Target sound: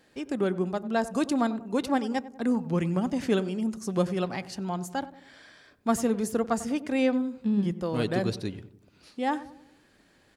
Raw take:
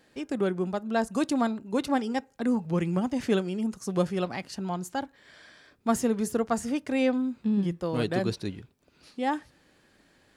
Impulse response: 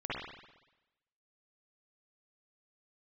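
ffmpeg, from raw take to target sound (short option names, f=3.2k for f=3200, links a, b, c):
-filter_complex "[0:a]asplit=2[a][b];[b]adelay=95,lowpass=f=1k:p=1,volume=-14dB,asplit=2[c][d];[d]adelay=95,lowpass=f=1k:p=1,volume=0.54,asplit=2[e][f];[f]adelay=95,lowpass=f=1k:p=1,volume=0.54,asplit=2[g][h];[h]adelay=95,lowpass=f=1k:p=1,volume=0.54,asplit=2[i][j];[j]adelay=95,lowpass=f=1k:p=1,volume=0.54[k];[a][c][e][g][i][k]amix=inputs=6:normalize=0"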